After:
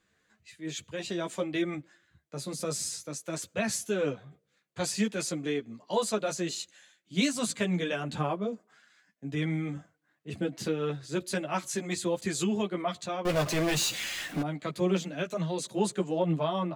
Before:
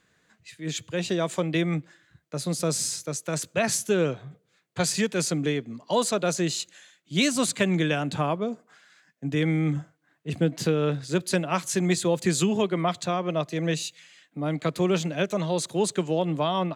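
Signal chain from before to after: 13.25–14.42 s: power-law waveshaper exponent 0.35; chorus voices 6, 0.51 Hz, delay 12 ms, depth 2.9 ms; trim -3 dB

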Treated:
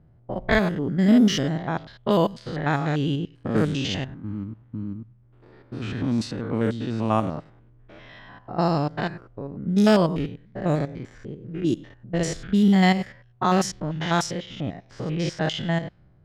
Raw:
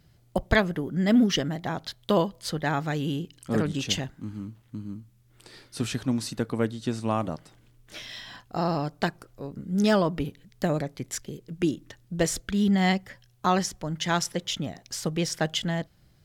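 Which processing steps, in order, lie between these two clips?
spectrogram pixelated in time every 100 ms; level-controlled noise filter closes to 940 Hz, open at -21.5 dBFS; trim +5.5 dB

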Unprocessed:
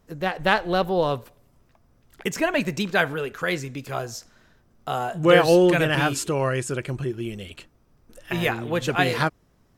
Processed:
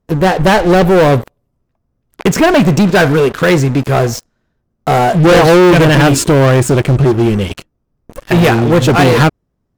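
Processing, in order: one-sided clip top -11 dBFS, bottom -7 dBFS; tilt shelf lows +5 dB, about 880 Hz; waveshaping leveller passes 5

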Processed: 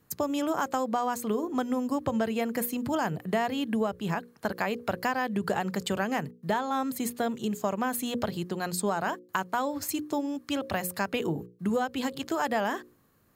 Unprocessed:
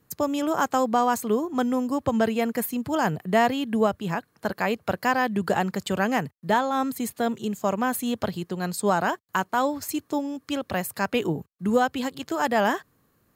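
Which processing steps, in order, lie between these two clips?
hum notches 60/120/180/240/300/360/420/480/540 Hz; compression 4:1, threshold -25 dBFS, peak gain reduction 8.5 dB

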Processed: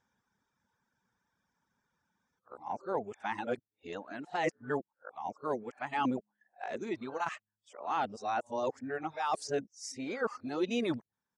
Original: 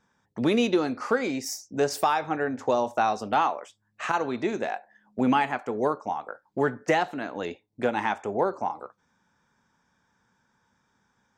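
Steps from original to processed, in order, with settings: reverse the whole clip; reverb removal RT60 1 s; resampled via 22.05 kHz; trim -8.5 dB

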